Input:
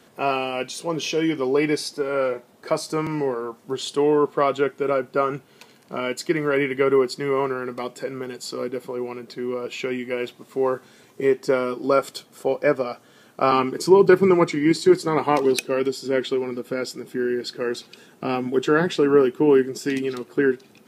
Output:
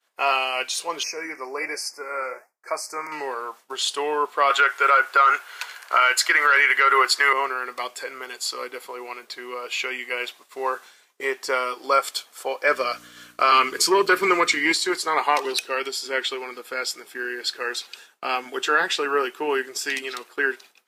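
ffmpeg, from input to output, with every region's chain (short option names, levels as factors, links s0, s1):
-filter_complex "[0:a]asettb=1/sr,asplit=3[s0][s1][s2];[s0]atrim=end=1.034[s3];[s1]atrim=start=1.03:end=3.12,asetpts=PTS-STARTPTS,afade=t=in:d=0.004:c=qsin,afade=t=out:st=2.086:d=0.004:c=qsin,flanger=delay=3.3:depth=9.4:regen=-80:speed=1.2:shape=sinusoidal,asuperstop=centerf=3400:order=8:qfactor=1.4[s4];[s2]atrim=start=3.116[s5];[s3][s4]acrossfade=d=0.004:c1=hsin:c2=qsin[s6];[s6][s5]acrossfade=d=0.004:c1=qsin:c2=hsin,asettb=1/sr,asplit=3[s7][s8][s9];[s7]atrim=end=4.504[s10];[s8]atrim=start=4.5:end=7.33,asetpts=PTS-STARTPTS,afade=t=in:d=0.004:c=qsin,afade=t=out:st=2.826:d=0.004:c=qsin,highpass=460,equalizer=f=1500:w=1.7:g=10,acontrast=58[s11];[s9]atrim=start=7.326[s12];[s10][s11]acrossfade=d=0.004:c1=hsin:c2=qsin[s13];[s13][s12]acrossfade=d=0.004:c1=qsin:c2=hsin,asettb=1/sr,asplit=3[s14][s15][s16];[s14]atrim=end=12.674[s17];[s15]atrim=start=12.67:end=14.75,asetpts=PTS-STARTPTS,afade=t=in:d=0.004:c=qsin,afade=t=out:st=2.076:d=0.004:c=qsin,equalizer=f=820:w=4.1:g=-14,aeval=exprs='val(0)+0.0282*(sin(2*PI*60*n/s)+sin(2*PI*2*60*n/s)/2+sin(2*PI*3*60*n/s)/3+sin(2*PI*4*60*n/s)/4+sin(2*PI*5*60*n/s)/5)':c=same,acontrast=34[s18];[s16]atrim=start=14.746[s19];[s17][s18]acrossfade=d=0.004:c1=hsin:c2=qsin[s20];[s20][s19]acrossfade=d=0.004:c1=qsin:c2=hsin,highpass=1000,agate=range=0.0224:threshold=0.00501:ratio=3:detection=peak,alimiter=level_in=4.73:limit=0.891:release=50:level=0:latency=1,volume=0.447"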